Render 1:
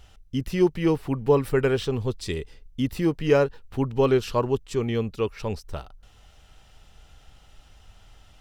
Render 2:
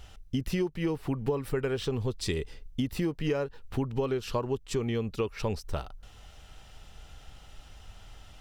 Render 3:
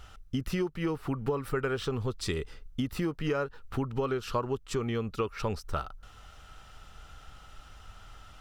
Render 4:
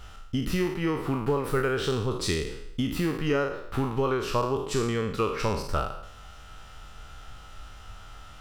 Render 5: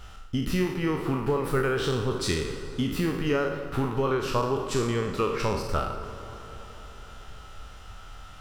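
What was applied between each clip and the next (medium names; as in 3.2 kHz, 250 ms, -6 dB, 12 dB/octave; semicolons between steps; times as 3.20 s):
compression 16:1, threshold -28 dBFS, peak gain reduction 15.5 dB; trim +2.5 dB
peaking EQ 1.3 kHz +11 dB 0.49 oct; trim -1.5 dB
spectral sustain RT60 0.74 s; trim +2.5 dB
plate-style reverb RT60 4.4 s, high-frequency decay 0.55×, DRR 9 dB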